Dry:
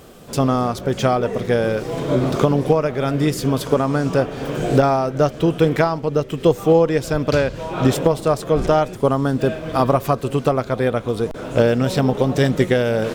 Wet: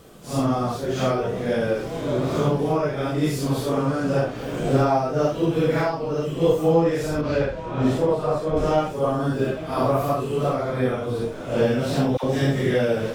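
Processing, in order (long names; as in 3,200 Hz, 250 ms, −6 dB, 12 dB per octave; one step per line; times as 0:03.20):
random phases in long frames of 200 ms
0:07.21–0:08.57: low-pass filter 2,500 Hz 6 dB per octave
0:12.17–0:12.74: all-pass dispersion lows, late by 65 ms, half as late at 720 Hz
level −4 dB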